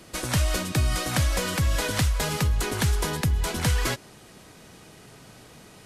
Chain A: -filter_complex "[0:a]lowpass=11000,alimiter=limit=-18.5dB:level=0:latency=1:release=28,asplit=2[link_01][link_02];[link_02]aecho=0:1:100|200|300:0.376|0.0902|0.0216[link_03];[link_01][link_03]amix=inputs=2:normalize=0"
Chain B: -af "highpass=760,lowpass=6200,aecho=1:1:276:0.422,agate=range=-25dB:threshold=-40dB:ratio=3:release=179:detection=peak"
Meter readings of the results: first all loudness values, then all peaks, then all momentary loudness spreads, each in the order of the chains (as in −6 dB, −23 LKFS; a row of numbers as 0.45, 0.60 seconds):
−27.0, −31.0 LKFS; −15.5, −11.5 dBFS; 2, 4 LU